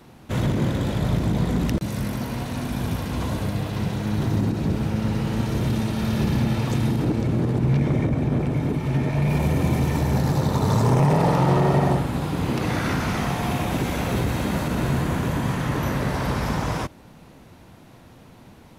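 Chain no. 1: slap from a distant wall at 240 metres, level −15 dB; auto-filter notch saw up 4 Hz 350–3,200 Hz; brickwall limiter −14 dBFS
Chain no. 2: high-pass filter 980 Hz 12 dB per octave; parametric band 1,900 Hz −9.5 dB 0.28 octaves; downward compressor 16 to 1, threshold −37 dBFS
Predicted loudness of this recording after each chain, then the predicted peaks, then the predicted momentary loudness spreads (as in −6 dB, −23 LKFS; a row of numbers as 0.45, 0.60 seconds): −24.5, −40.5 LKFS; −14.0, −19.5 dBFS; 6, 3 LU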